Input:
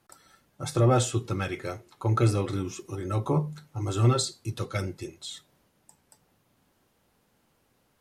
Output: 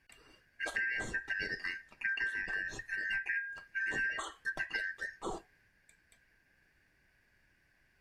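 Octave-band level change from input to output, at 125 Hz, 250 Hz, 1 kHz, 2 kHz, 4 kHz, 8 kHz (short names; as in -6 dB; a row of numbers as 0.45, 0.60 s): -32.0, -21.0, -14.5, +11.0, -10.0, -16.5 dB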